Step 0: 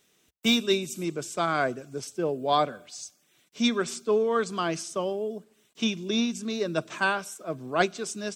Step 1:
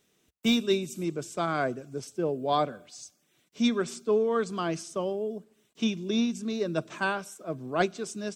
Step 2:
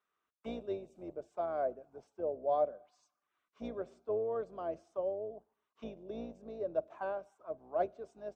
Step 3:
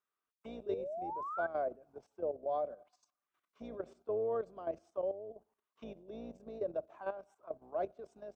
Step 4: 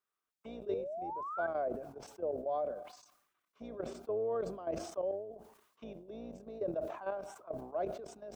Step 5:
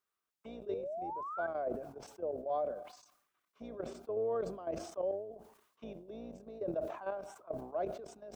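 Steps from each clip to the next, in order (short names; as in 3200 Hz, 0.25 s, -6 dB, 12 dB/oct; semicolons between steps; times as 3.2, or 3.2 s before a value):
tilt shelf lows +3 dB, about 640 Hz; gain -2 dB
octaver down 2 oct, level +1 dB; auto-wah 600–1200 Hz, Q 4.4, down, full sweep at -26.5 dBFS
level quantiser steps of 12 dB; painted sound rise, 0.66–1.47, 400–1600 Hz -43 dBFS; gain +2.5 dB
sustainer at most 72 dB/s
tremolo saw down 1.2 Hz, depth 35%; gain +1 dB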